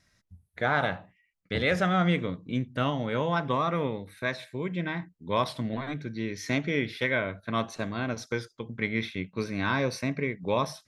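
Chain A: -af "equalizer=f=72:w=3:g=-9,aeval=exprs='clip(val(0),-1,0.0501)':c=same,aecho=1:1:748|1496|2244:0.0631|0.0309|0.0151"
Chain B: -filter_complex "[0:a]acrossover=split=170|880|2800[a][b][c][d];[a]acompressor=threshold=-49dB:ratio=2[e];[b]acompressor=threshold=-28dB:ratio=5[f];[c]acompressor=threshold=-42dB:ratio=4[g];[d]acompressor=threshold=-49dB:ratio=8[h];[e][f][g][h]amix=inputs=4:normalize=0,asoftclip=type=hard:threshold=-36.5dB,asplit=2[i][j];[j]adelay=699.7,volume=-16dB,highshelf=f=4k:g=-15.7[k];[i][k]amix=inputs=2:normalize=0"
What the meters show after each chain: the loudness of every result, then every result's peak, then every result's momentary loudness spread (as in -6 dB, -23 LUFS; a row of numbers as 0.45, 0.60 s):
-30.5, -40.0 LUFS; -11.5, -35.0 dBFS; 8, 5 LU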